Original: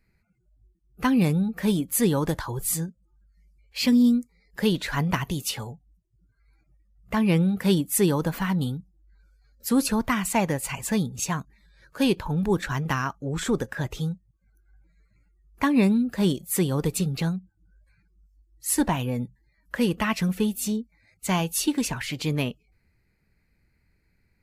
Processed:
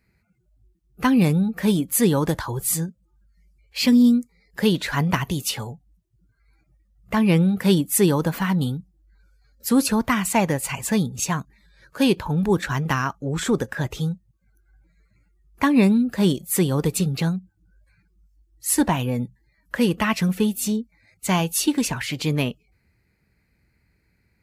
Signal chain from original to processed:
high-pass filter 49 Hz
level +3.5 dB

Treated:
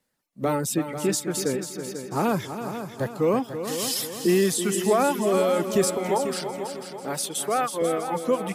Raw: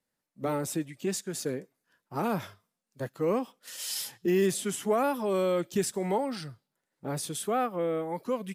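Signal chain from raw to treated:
reverb reduction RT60 1.2 s
0:05.97–0:07.82: high-pass filter 610 Hz 6 dB per octave
in parallel at −2.5 dB: brickwall limiter −27 dBFS, peak gain reduction 10 dB
on the sum: echo machine with several playback heads 164 ms, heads second and third, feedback 50%, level −10 dB
level +3.5 dB

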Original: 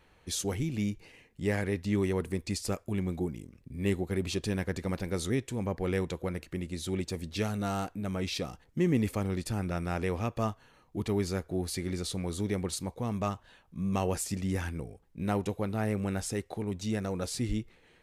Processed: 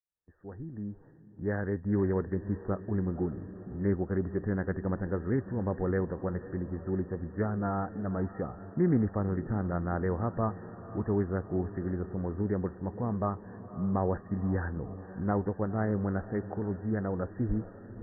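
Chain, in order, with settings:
fade in at the beginning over 2.05 s
noise gate −58 dBFS, range −18 dB
linear-phase brick-wall low-pass 1,900 Hz
feedback delay with all-pass diffusion 519 ms, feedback 61%, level −15 dB
highs frequency-modulated by the lows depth 0.13 ms
level +1 dB

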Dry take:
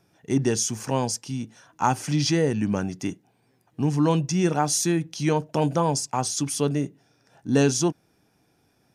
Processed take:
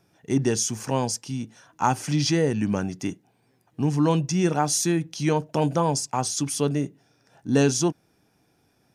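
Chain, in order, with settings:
0:01.87–0:02.87: one half of a high-frequency compander encoder only

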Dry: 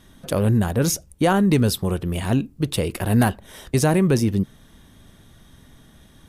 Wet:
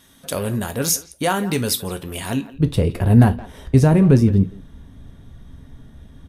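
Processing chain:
spectral tilt +2 dB per octave, from 0:02.53 −2.5 dB per octave
far-end echo of a speakerphone 170 ms, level −16 dB
reverb whose tail is shaped and stops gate 90 ms falling, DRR 8 dB
level −1 dB

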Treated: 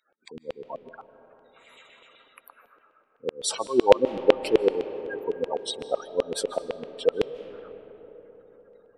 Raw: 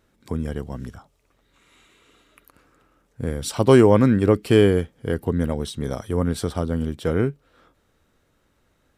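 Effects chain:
gate on every frequency bin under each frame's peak −15 dB strong
high-pass filter 100 Hz
auto-filter high-pass saw down 7.9 Hz 500–3,000 Hz
parametric band 1,500 Hz −2 dB
on a send: convolution reverb RT60 4.5 s, pre-delay 110 ms, DRR 13 dB
on the sum: level +2.5 dB

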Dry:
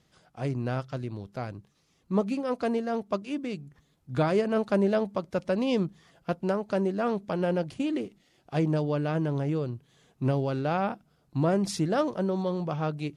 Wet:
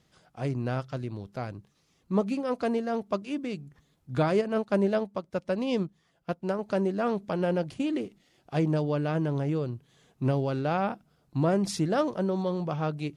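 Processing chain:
0:04.41–0:06.59: expander for the loud parts 1.5 to 1, over −42 dBFS

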